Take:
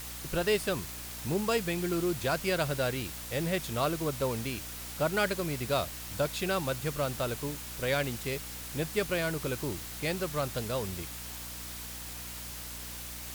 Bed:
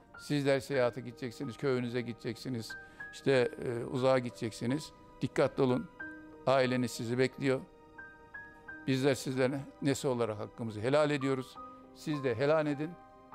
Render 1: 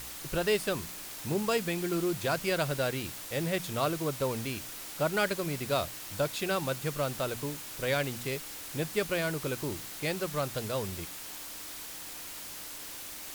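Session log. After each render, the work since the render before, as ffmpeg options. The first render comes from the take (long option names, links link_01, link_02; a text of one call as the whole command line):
ffmpeg -i in.wav -af "bandreject=frequency=60:width_type=h:width=4,bandreject=frequency=120:width_type=h:width=4,bandreject=frequency=180:width_type=h:width=4,bandreject=frequency=240:width_type=h:width=4" out.wav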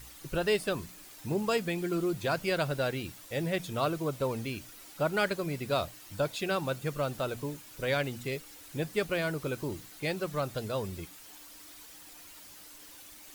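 ffmpeg -i in.wav -af "afftdn=noise_reduction=10:noise_floor=-43" out.wav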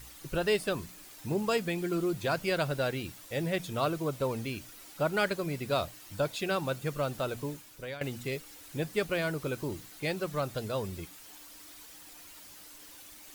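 ffmpeg -i in.wav -filter_complex "[0:a]asplit=2[link_01][link_02];[link_01]atrim=end=8.01,asetpts=PTS-STARTPTS,afade=type=out:start_time=7.51:duration=0.5:silence=0.141254[link_03];[link_02]atrim=start=8.01,asetpts=PTS-STARTPTS,afade=type=in:duration=0.004:curve=hsin:silence=0.141254[link_04];[link_03][link_04]concat=n=2:v=0:a=1" out.wav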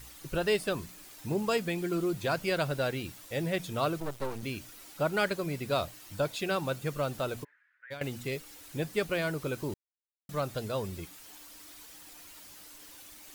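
ffmpeg -i in.wav -filter_complex "[0:a]asettb=1/sr,asplit=3[link_01][link_02][link_03];[link_01]atrim=end=4.004[link_04];[link_02]atrim=start=4:end=4.43,asetpts=PTS-STARTPTS,afade=type=in:duration=0.004:curve=qsin,afade=type=out:start_time=0.426:duration=0.004:curve=qsin,aeval=exprs='max(val(0),0)':channel_layout=same[link_05];[link_03]atrim=start=4.426[link_06];[link_04][link_05]acrossfade=duration=0.004:curve1=hsin:curve2=qsin[link_07];[link_07][link_06]acrossfade=duration=0.004:curve1=qsin:curve2=hsin,asplit=3[link_08][link_09][link_10];[link_08]afade=type=out:start_time=7.43:duration=0.02[link_11];[link_09]asuperpass=centerf=1700:order=4:qfactor=3.7,afade=type=in:start_time=7.43:duration=0.02,afade=type=out:start_time=7.9:duration=0.02[link_12];[link_10]afade=type=in:start_time=7.9:duration=0.02[link_13];[link_11][link_12][link_13]amix=inputs=3:normalize=0,asplit=3[link_14][link_15][link_16];[link_14]atrim=end=9.74,asetpts=PTS-STARTPTS,afade=type=out:start_time=9.736:duration=0.004:curve=hsin[link_17];[link_15]atrim=start=9.74:end=10.29,asetpts=PTS-STARTPTS,volume=0[link_18];[link_16]atrim=start=10.29,asetpts=PTS-STARTPTS,afade=type=in:duration=0.004:curve=hsin[link_19];[link_17][link_18][link_19]concat=n=3:v=0:a=1" out.wav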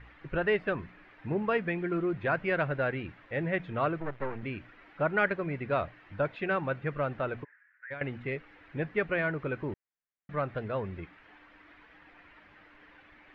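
ffmpeg -i in.wav -af "lowpass=frequency=2400:width=0.5412,lowpass=frequency=2400:width=1.3066,equalizer=frequency=1800:width=1.8:gain=6.5" out.wav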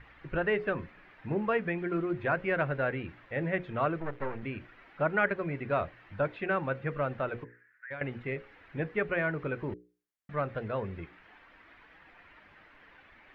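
ffmpeg -i in.wav -filter_complex "[0:a]bandreject=frequency=60:width_type=h:width=6,bandreject=frequency=120:width_type=h:width=6,bandreject=frequency=180:width_type=h:width=6,bandreject=frequency=240:width_type=h:width=6,bandreject=frequency=300:width_type=h:width=6,bandreject=frequency=360:width_type=h:width=6,bandreject=frequency=420:width_type=h:width=6,bandreject=frequency=480:width_type=h:width=6,bandreject=frequency=540:width_type=h:width=6,acrossover=split=3200[link_01][link_02];[link_02]acompressor=threshold=-57dB:ratio=4:attack=1:release=60[link_03];[link_01][link_03]amix=inputs=2:normalize=0" out.wav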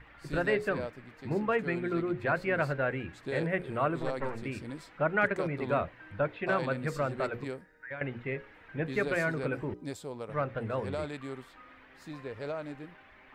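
ffmpeg -i in.wav -i bed.wav -filter_complex "[1:a]volume=-8.5dB[link_01];[0:a][link_01]amix=inputs=2:normalize=0" out.wav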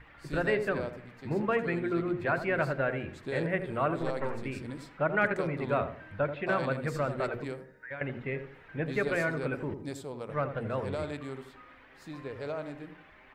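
ffmpeg -i in.wav -filter_complex "[0:a]asplit=2[link_01][link_02];[link_02]adelay=82,lowpass=frequency=920:poles=1,volume=-8dB,asplit=2[link_03][link_04];[link_04]adelay=82,lowpass=frequency=920:poles=1,volume=0.39,asplit=2[link_05][link_06];[link_06]adelay=82,lowpass=frequency=920:poles=1,volume=0.39,asplit=2[link_07][link_08];[link_08]adelay=82,lowpass=frequency=920:poles=1,volume=0.39[link_09];[link_01][link_03][link_05][link_07][link_09]amix=inputs=5:normalize=0" out.wav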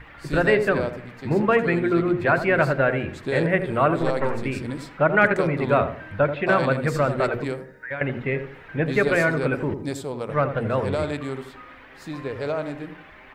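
ffmpeg -i in.wav -af "volume=9.5dB" out.wav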